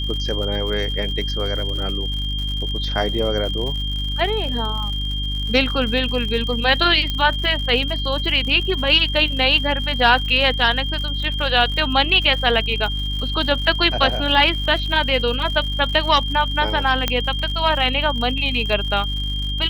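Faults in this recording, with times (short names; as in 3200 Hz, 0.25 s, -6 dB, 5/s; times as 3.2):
crackle 110/s -28 dBFS
hum 50 Hz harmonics 6 -25 dBFS
tone 3200 Hz -26 dBFS
7.1 pop -10 dBFS
17.08 pop -4 dBFS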